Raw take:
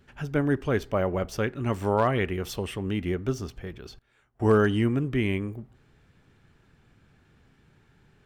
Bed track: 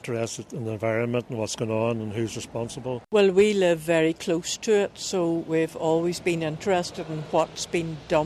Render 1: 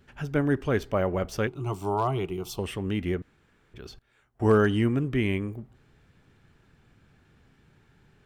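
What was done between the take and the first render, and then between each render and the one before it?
1.47–2.59 fixed phaser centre 350 Hz, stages 8; 3.22–3.74 room tone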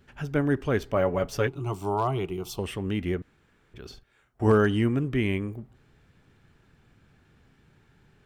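0.95–1.59 comb 7.1 ms, depth 62%; 3.86–4.52 doubler 47 ms -8 dB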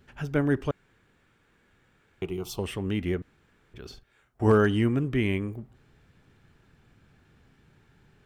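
0.71–2.22 room tone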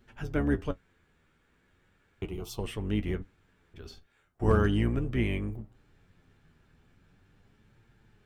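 octaver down 2 oct, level 0 dB; flange 0.38 Hz, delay 8.5 ms, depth 4.1 ms, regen +45%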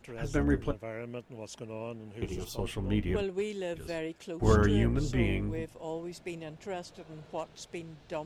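add bed track -15 dB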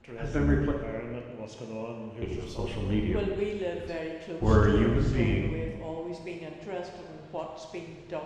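air absorption 100 m; plate-style reverb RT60 1.5 s, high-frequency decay 0.9×, DRR 0.5 dB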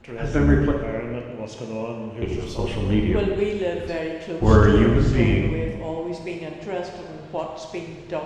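gain +7.5 dB; limiter -3 dBFS, peak gain reduction 1 dB

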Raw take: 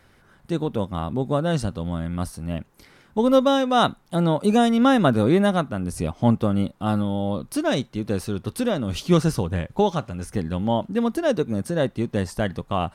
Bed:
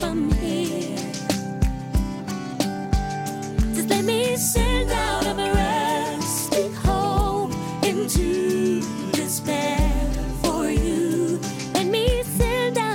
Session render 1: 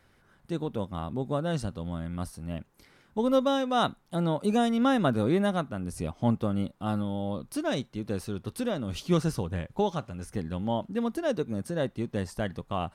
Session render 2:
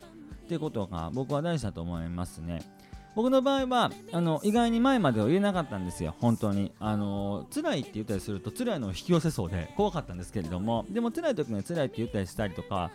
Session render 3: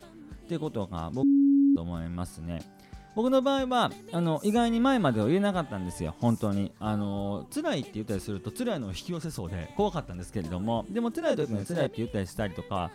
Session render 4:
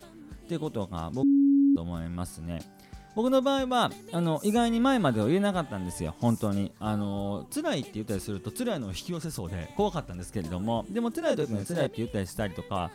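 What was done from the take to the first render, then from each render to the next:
gain -7 dB
add bed -25.5 dB
1.23–1.76 bleep 279 Hz -17.5 dBFS; 8.81–9.7 compressor 4:1, threshold -30 dBFS; 11.19–11.87 doubler 28 ms -3 dB
high shelf 6600 Hz +5.5 dB

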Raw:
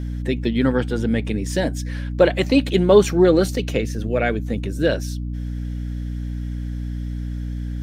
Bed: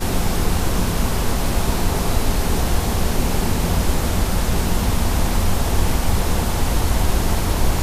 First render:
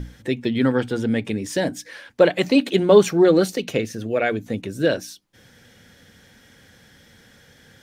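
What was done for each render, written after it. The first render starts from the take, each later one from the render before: notches 60/120/180/240/300 Hz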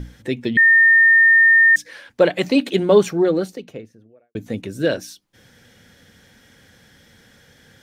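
0.57–1.76 bleep 1820 Hz -8.5 dBFS; 2.71–4.35 studio fade out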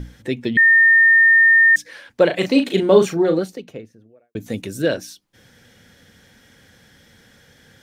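2.26–3.39 doubler 37 ms -7 dB; 4.4–4.82 high shelf 4100 Hz +9.5 dB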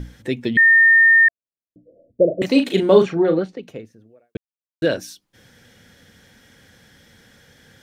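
1.28–2.42 Chebyshev low-pass 680 Hz, order 10; 3.02–3.63 LPF 3000 Hz; 4.37–4.82 mute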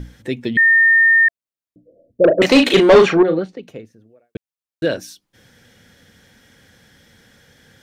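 2.24–3.23 overdrive pedal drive 22 dB, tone 3900 Hz, clips at -1 dBFS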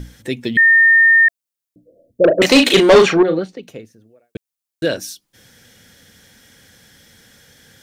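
high shelf 4200 Hz +10 dB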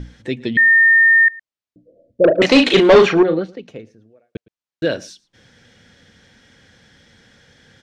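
air absorption 120 m; echo 0.112 s -23.5 dB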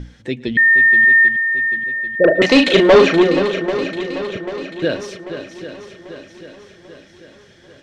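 swung echo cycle 0.791 s, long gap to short 1.5:1, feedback 49%, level -10.5 dB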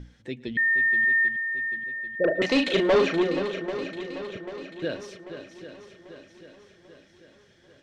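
gain -11 dB

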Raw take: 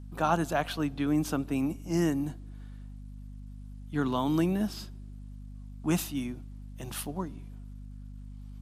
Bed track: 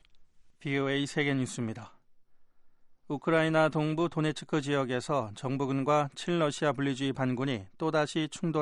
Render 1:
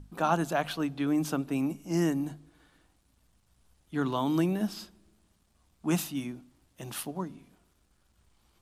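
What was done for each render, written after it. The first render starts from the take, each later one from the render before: notches 50/100/150/200/250 Hz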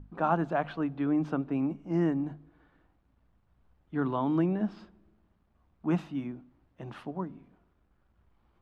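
LPF 1700 Hz 12 dB/oct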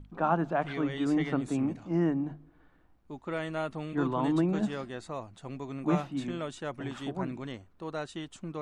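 add bed track -8.5 dB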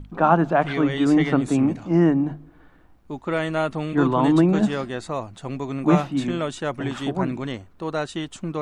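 gain +10 dB

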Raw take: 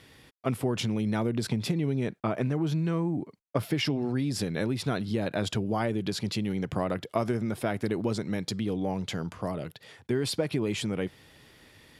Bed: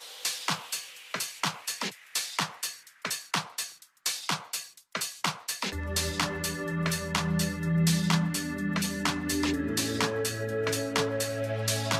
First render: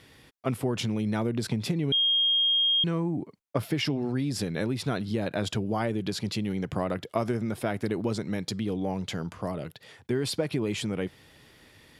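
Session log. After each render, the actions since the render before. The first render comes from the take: 1.92–2.84 bleep 3240 Hz -20.5 dBFS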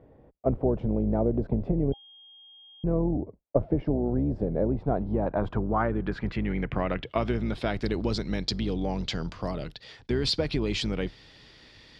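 octaver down 2 oct, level -3 dB; low-pass sweep 620 Hz -> 4700 Hz, 4.64–7.85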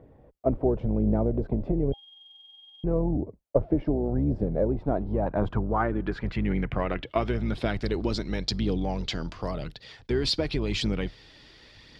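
phaser 0.92 Hz, delay 3.6 ms, feedback 30%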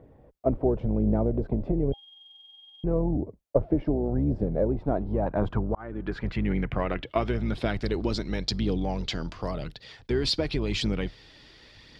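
5.75–6.17 fade in linear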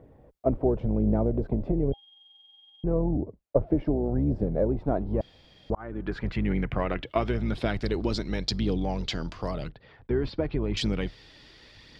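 1.9–3.67 high shelf 3500 Hz -9 dB; 5.21–5.7 room tone; 9.69–10.77 LPF 1500 Hz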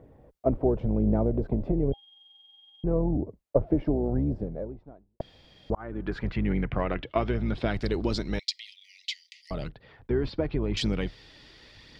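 4.16–5.2 fade out quadratic; 6.31–7.71 air absorption 92 m; 8.39–9.51 Chebyshev high-pass 1900 Hz, order 10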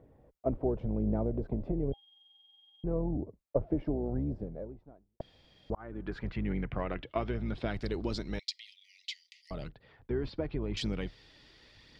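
gain -6.5 dB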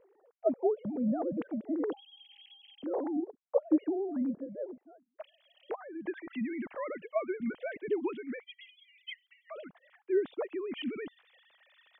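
sine-wave speech; vibrato 12 Hz 49 cents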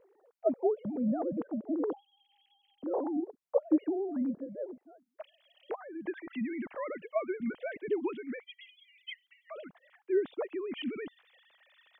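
1.4–3.09 resonant high shelf 1600 Hz -12.5 dB, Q 1.5

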